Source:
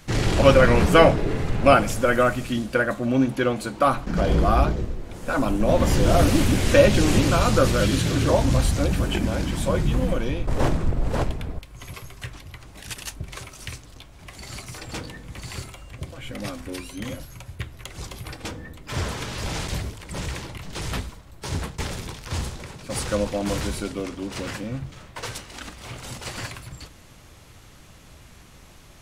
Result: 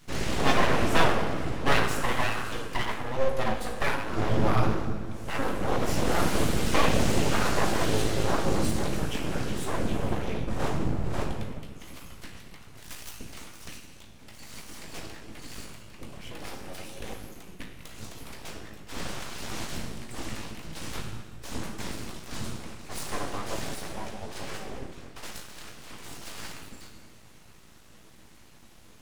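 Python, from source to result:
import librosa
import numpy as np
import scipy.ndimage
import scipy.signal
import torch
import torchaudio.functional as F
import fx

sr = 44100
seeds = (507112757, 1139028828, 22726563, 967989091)

y = fx.comb_fb(x, sr, f0_hz=54.0, decay_s=0.27, harmonics='all', damping=0.0, mix_pct=90)
y = fx.rev_fdn(y, sr, rt60_s=1.5, lf_ratio=1.4, hf_ratio=0.85, size_ms=35.0, drr_db=3.0)
y = np.abs(y)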